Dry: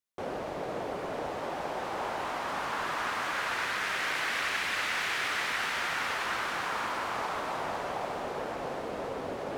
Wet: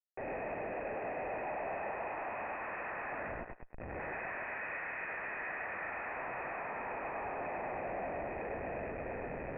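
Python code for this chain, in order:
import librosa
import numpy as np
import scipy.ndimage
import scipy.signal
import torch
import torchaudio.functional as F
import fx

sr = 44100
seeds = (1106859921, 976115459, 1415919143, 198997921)

p1 = fx.rattle_buzz(x, sr, strikes_db=-54.0, level_db=-27.0)
p2 = fx.doppler_pass(p1, sr, speed_mps=16, closest_m=4.0, pass_at_s=3.62)
p3 = 10.0 ** (-32.5 / 20.0) * np.tanh(p2 / 10.0 ** (-32.5 / 20.0))
p4 = p2 + (p3 * librosa.db_to_amplitude(-11.5))
p5 = scipy.signal.sosfilt(scipy.signal.butter(4, 210.0, 'highpass', fs=sr, output='sos'), p4)
p6 = fx.low_shelf(p5, sr, hz=280.0, db=3.0)
p7 = fx.over_compress(p6, sr, threshold_db=-43.0, ratio=-0.5)
p8 = fx.schmitt(p7, sr, flips_db=-53.5)
p9 = scipy.signal.sosfilt(scipy.signal.cheby1(6, 9, 2600.0, 'lowpass', fs=sr, output='sos'), p8)
p10 = p9 + fx.echo_thinned(p9, sr, ms=103, feedback_pct=22, hz=340.0, wet_db=-4, dry=0)
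y = p10 * librosa.db_to_amplitude(9.5)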